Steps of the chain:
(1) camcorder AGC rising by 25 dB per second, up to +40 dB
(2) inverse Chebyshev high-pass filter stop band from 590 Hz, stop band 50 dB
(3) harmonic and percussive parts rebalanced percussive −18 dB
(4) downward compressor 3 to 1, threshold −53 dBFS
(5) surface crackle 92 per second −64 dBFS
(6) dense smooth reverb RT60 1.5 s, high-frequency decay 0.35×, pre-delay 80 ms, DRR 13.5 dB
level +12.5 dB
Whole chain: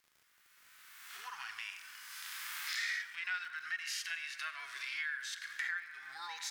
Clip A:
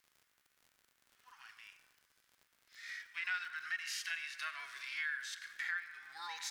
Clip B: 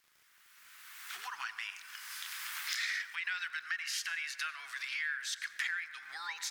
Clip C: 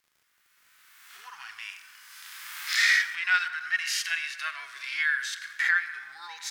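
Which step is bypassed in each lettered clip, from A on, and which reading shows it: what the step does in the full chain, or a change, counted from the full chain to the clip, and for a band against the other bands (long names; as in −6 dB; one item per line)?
1, change in momentary loudness spread +6 LU
3, change in crest factor +3.5 dB
4, average gain reduction 6.0 dB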